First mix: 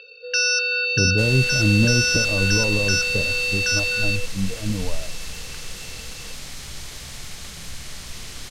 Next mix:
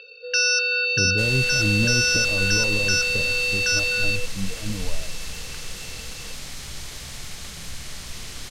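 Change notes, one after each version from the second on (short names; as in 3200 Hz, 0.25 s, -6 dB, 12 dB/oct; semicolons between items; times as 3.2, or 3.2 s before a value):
speech -5.0 dB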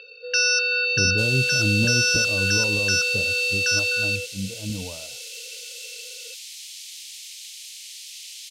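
second sound: add steep high-pass 2500 Hz 36 dB/oct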